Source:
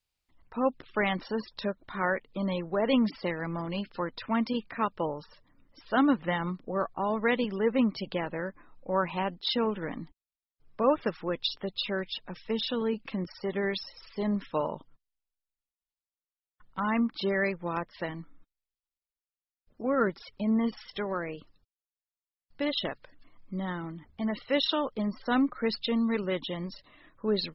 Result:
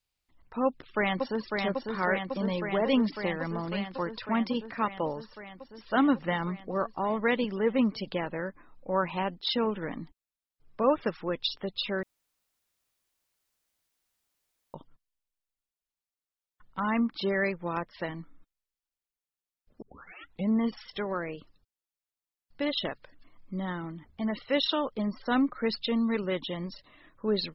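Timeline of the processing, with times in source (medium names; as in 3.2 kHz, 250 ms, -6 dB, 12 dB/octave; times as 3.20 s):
0.65–1.51 s: echo throw 550 ms, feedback 80%, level -4 dB
12.03–14.74 s: room tone
19.82 s: tape start 0.67 s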